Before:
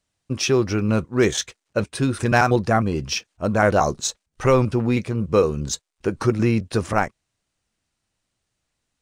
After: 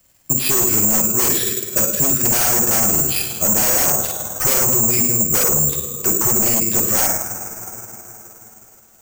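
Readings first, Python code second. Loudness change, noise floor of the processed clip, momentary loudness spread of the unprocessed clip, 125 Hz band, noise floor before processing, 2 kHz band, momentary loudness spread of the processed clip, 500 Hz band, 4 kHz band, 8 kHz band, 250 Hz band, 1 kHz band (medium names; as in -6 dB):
+7.5 dB, -50 dBFS, 9 LU, -4.5 dB, -79 dBFS, -1.5 dB, 8 LU, -4.5 dB, +4.0 dB, +17.5 dB, -3.0 dB, -3.0 dB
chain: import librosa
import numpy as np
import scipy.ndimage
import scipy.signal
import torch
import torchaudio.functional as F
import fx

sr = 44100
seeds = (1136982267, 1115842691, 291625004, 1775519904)

p1 = fx.rev_double_slope(x, sr, seeds[0], early_s=0.73, late_s=2.9, knee_db=-18, drr_db=1.0)
p2 = p1 * (1.0 - 0.36 / 2.0 + 0.36 / 2.0 * np.cos(2.0 * np.pi * 19.0 * (np.arange(len(p1)) / sr)))
p3 = fx.fold_sine(p2, sr, drive_db=15, ceiling_db=-4.5)
p4 = p2 + (p3 * 10.0 ** (-3.0 / 20.0))
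p5 = (np.kron(scipy.signal.resample_poly(p4, 1, 6), np.eye(6)[0]) * 6)[:len(p4)]
p6 = fx.band_squash(p5, sr, depth_pct=40)
y = p6 * 10.0 ** (-14.5 / 20.0)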